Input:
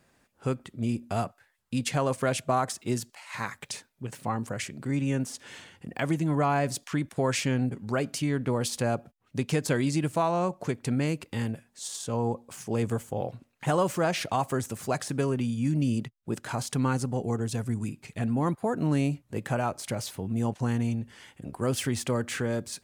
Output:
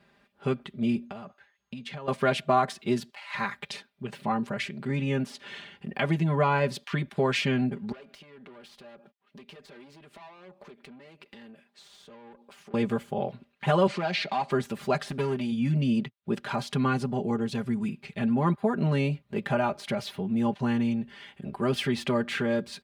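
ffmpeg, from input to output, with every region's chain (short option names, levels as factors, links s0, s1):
-filter_complex "[0:a]asettb=1/sr,asplit=3[s0][s1][s2];[s0]atrim=end=1.064[s3];[s1]atrim=start=1.06:end=2.08,asetpts=PTS-STARTPTS,afade=t=in:d=0.004:c=qsin,afade=t=out:st=1.016:d=0.004:c=qsin,highshelf=f=7600:g=-8.5,acompressor=threshold=0.0141:ratio=10:attack=3.2:release=140:knee=1:detection=peak,aeval=exprs='val(0)+0.000355*sin(2*PI*6500*n/s)':c=same[s4];[s2]atrim=start=2.076[s5];[s3][s4]acrossfade=d=0.004:c1=hsin:c2=qsin[s6];[s6][s5]acrossfade=d=0.004:c1=qsin:c2=hsin,asettb=1/sr,asplit=3[s7][s8][s9];[s7]atrim=end=7.924[s10];[s8]atrim=start=7.92:end=12.74,asetpts=PTS-STARTPTS,afade=t=in:d=0.004:c=qsin,afade=t=out:st=4.816:d=0.004:c=qsin,highpass=270,aeval=exprs='(tanh(39.8*val(0)+0.55)-tanh(0.55))/39.8':c=same,acompressor=threshold=0.00501:ratio=16:attack=3.2:release=140:knee=1:detection=peak[s11];[s9]atrim=start=12.736[s12];[s10][s11]acrossfade=d=0.004:c1=hsin:c2=qsin[s13];[s13][s12]acrossfade=d=0.004:c1=qsin:c2=hsin,asettb=1/sr,asplit=3[s14][s15][s16];[s14]atrim=end=13.874[s17];[s15]atrim=start=13.87:end=14.51,asetpts=PTS-STARTPTS,afade=t=in:d=0.004:c=qsin,afade=t=out:st=0.636:d=0.004:c=qsin,highpass=f=150:w=0.5412,highpass=f=150:w=1.3066,equalizer=f=780:t=q:w=4:g=3,equalizer=f=2200:t=q:w=4:g=5,equalizer=f=4400:t=q:w=4:g=9,lowpass=f=8700:w=0.5412,lowpass=f=8700:w=1.3066,acompressor=threshold=0.02:ratio=1.5:attack=3.2:release=140:knee=1:detection=peak,asoftclip=type=hard:threshold=0.0596[s18];[s16]atrim=start=14.506[s19];[s17][s18]acrossfade=d=0.004:c1=hsin:c2=qsin[s20];[s20][s19]acrossfade=d=0.004:c1=qsin:c2=hsin,asettb=1/sr,asplit=3[s21][s22][s23];[s21]atrim=end=15.084[s24];[s22]atrim=start=15.08:end=15.52,asetpts=PTS-STARTPTS,afade=t=in:d=0.004:c=qsin,afade=t=out:st=0.436:d=0.004:c=qsin,highshelf=f=4600:g=8,aeval=exprs='(tanh(14.1*val(0)+0.65)-tanh(0.65))/14.1':c=same[s25];[s23]atrim=start=15.516[s26];[s24][s25]acrossfade=d=0.004:c1=hsin:c2=qsin[s27];[s27][s26]acrossfade=d=0.004:c1=qsin:c2=hsin,highpass=53,highshelf=f=5100:t=q:w=1.5:g=-11.5,aecho=1:1:5:0.84"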